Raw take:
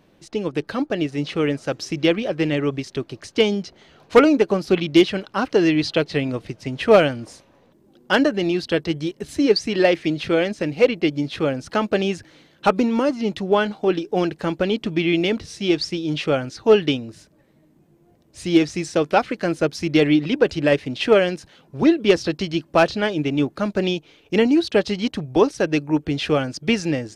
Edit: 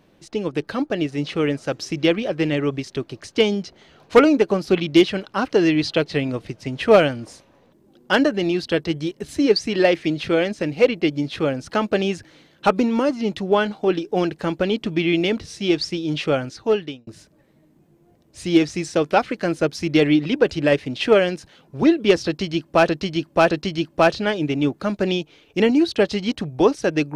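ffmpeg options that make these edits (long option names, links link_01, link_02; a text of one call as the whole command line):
ffmpeg -i in.wav -filter_complex "[0:a]asplit=4[link_01][link_02][link_03][link_04];[link_01]atrim=end=17.07,asetpts=PTS-STARTPTS,afade=type=out:start_time=16.43:duration=0.64[link_05];[link_02]atrim=start=17.07:end=22.892,asetpts=PTS-STARTPTS,afade=type=in:duration=0.004:curve=hsin[link_06];[link_03]atrim=start=22.268:end=22.892[link_07];[link_04]atrim=start=22.268[link_08];[link_05][link_06]concat=n=2:v=0:a=1[link_09];[link_09][link_07]acrossfade=duration=0.004:curve1=hsin:curve2=hsin[link_10];[link_10][link_08]acrossfade=duration=0.004:curve1=hsin:curve2=hsin" out.wav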